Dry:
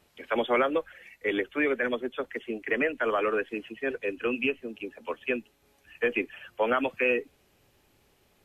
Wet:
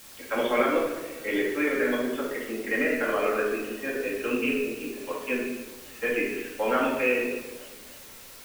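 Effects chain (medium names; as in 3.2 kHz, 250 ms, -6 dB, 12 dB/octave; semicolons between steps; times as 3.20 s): in parallel at -8 dB: word length cut 6-bit, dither triangular; on the sum: simulated room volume 500 m³, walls mixed, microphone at 2.2 m; modulated delay 282 ms, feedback 58%, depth 173 cents, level -23 dB; trim -7 dB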